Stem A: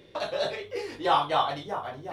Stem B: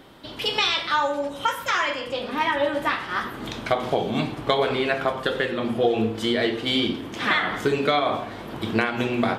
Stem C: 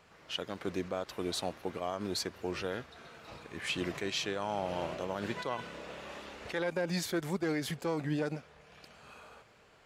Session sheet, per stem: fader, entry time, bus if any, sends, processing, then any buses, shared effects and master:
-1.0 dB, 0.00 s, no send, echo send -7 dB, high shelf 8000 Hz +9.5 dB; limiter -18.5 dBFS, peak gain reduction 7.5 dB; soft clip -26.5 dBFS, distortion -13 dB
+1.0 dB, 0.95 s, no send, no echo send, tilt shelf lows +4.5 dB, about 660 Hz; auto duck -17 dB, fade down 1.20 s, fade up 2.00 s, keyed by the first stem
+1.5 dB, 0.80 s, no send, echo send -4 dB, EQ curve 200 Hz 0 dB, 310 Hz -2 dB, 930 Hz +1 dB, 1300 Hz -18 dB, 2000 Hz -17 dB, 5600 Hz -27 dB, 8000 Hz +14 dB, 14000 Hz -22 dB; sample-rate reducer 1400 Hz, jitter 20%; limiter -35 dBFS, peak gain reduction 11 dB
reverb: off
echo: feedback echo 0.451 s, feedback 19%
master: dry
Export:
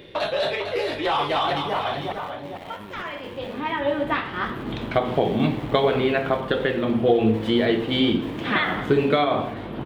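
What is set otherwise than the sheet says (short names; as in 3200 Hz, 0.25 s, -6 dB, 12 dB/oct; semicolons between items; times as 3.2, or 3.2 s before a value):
stem A -1.0 dB -> +8.5 dB; stem B: entry 0.95 s -> 1.25 s; master: extra resonant high shelf 4400 Hz -8.5 dB, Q 1.5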